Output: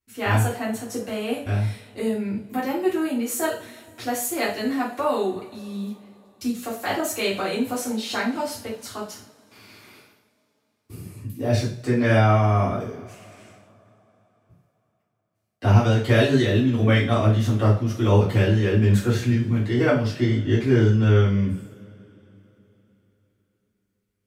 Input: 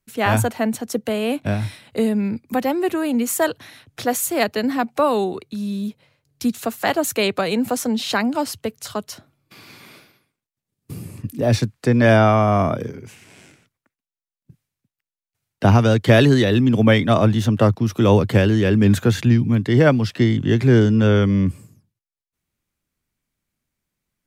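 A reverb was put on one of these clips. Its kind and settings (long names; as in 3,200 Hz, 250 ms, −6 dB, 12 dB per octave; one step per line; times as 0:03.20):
coupled-rooms reverb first 0.39 s, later 3.9 s, from −28 dB, DRR −8.5 dB
level −13 dB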